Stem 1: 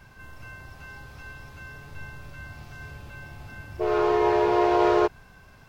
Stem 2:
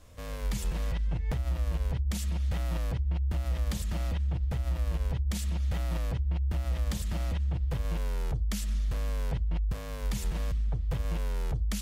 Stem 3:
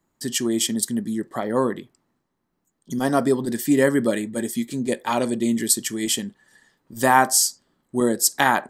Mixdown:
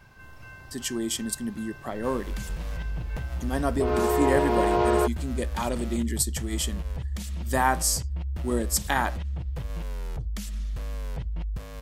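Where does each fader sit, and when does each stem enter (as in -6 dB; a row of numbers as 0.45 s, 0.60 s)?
-2.5 dB, -2.0 dB, -7.0 dB; 0.00 s, 1.85 s, 0.50 s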